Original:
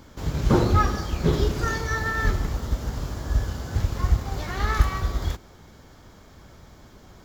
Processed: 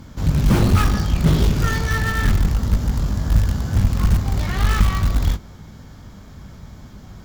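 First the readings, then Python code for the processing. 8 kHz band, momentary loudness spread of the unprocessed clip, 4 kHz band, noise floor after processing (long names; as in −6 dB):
+6.0 dB, 9 LU, +6.0 dB, −41 dBFS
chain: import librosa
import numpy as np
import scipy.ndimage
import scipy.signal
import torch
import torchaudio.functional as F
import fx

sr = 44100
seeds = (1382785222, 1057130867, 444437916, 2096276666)

p1 = fx.doubler(x, sr, ms=20.0, db=-11.5)
p2 = fx.cheby_harmonics(p1, sr, harmonics=(3, 5, 6), levels_db=(-14, -14, -16), full_scale_db=-5.5)
p3 = fx.dynamic_eq(p2, sr, hz=2900.0, q=1.8, threshold_db=-41.0, ratio=4.0, max_db=4)
p4 = (np.mod(10.0 ** (17.5 / 20.0) * p3 + 1.0, 2.0) - 1.0) / 10.0 ** (17.5 / 20.0)
p5 = p3 + (p4 * 10.0 ** (-6.0 / 20.0))
p6 = fx.low_shelf_res(p5, sr, hz=270.0, db=6.5, q=1.5)
y = p6 * 10.0 ** (-3.0 / 20.0)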